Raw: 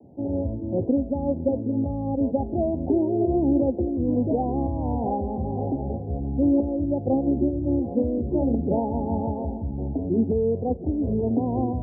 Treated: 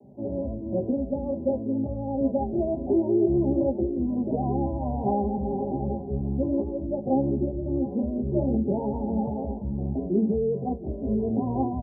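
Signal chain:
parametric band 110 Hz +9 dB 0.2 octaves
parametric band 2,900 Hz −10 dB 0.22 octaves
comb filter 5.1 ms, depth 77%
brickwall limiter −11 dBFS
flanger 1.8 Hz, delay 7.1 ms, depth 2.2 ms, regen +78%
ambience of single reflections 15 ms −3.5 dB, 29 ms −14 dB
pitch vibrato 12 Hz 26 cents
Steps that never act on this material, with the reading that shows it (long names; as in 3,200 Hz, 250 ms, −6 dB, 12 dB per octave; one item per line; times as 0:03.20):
parametric band 2,900 Hz: nothing at its input above 910 Hz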